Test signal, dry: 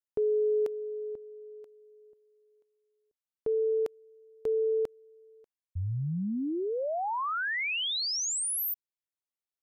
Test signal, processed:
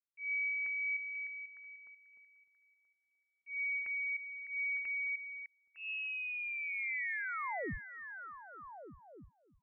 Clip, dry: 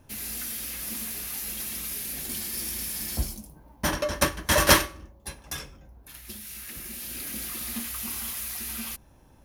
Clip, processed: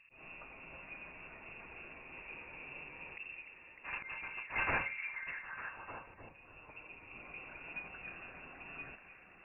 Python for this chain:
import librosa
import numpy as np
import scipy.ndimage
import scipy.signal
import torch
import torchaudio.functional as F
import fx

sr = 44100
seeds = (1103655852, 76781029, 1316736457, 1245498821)

y = (np.mod(10.0 ** (12.0 / 20.0) * x + 1.0, 2.0) - 1.0) / 10.0 ** (12.0 / 20.0)
y = fx.auto_swell(y, sr, attack_ms=153.0)
y = fx.echo_stepped(y, sr, ms=302, hz=420.0, octaves=0.7, feedback_pct=70, wet_db=-1.0)
y = fx.freq_invert(y, sr, carrier_hz=2700)
y = y * 10.0 ** (-8.5 / 20.0)